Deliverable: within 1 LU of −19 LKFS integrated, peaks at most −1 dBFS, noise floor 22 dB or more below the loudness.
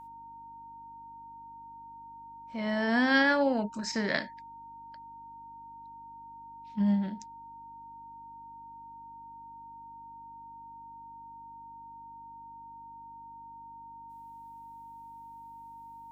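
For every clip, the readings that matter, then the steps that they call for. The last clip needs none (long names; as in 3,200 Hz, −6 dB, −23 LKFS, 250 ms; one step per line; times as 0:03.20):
mains hum 50 Hz; hum harmonics up to 300 Hz; level of the hum −62 dBFS; interfering tone 920 Hz; level of the tone −45 dBFS; integrated loudness −28.5 LKFS; sample peak −11.0 dBFS; target loudness −19.0 LKFS
→ hum removal 50 Hz, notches 6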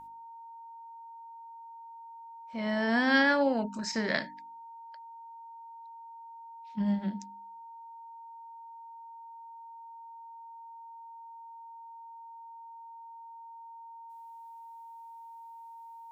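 mains hum none found; interfering tone 920 Hz; level of the tone −45 dBFS
→ notch filter 920 Hz, Q 30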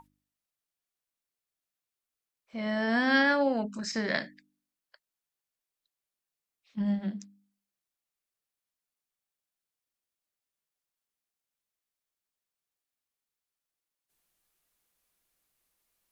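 interfering tone none found; integrated loudness −28.5 LKFS; sample peak −11.0 dBFS; target loudness −19.0 LKFS
→ level +9.5 dB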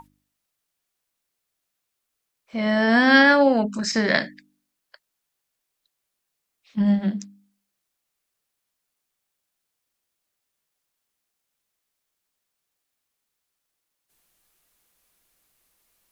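integrated loudness −19.0 LKFS; sample peak −1.5 dBFS; background noise floor −81 dBFS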